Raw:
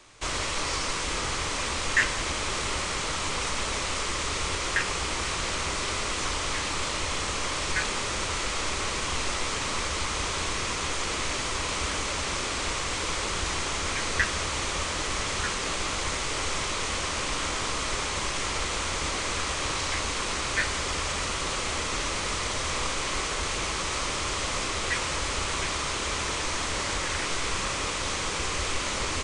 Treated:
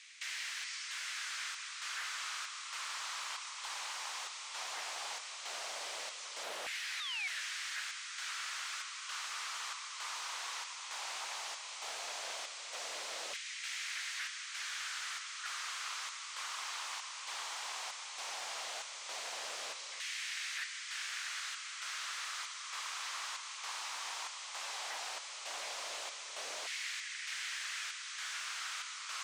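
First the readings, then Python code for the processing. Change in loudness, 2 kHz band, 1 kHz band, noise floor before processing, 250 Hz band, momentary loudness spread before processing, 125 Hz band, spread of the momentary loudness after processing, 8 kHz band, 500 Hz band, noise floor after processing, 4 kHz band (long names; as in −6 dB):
−12.0 dB, −11.5 dB, −14.0 dB, −31 dBFS, below −30 dB, 2 LU, below −40 dB, 3 LU, −11.5 dB, −20.0 dB, −47 dBFS, −10.5 dB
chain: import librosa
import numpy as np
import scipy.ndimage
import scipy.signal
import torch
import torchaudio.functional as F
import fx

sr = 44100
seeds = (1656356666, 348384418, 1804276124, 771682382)

y = F.preemphasis(torch.from_numpy(x), 0.97).numpy()
y = fx.rider(y, sr, range_db=10, speed_s=2.0)
y = 10.0 ** (-27.5 / 20.0) * np.tanh(y / 10.0 ** (-27.5 / 20.0))
y = fx.chopper(y, sr, hz=1.1, depth_pct=65, duty_pct=70)
y = fx.spec_paint(y, sr, seeds[0], shape='fall', start_s=6.43, length_s=0.98, low_hz=550.0, high_hz=4100.0, level_db=-34.0)
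y = 10.0 ** (-37.5 / 20.0) * (np.abs((y / 10.0 ** (-37.5 / 20.0) + 3.0) % 4.0 - 2.0) - 1.0)
y = fx.filter_lfo_highpass(y, sr, shape='saw_down', hz=0.15, low_hz=530.0, high_hz=2000.0, q=2.4)
y = fx.air_absorb(y, sr, metres=87.0)
y = y * librosa.db_to_amplitude(4.0)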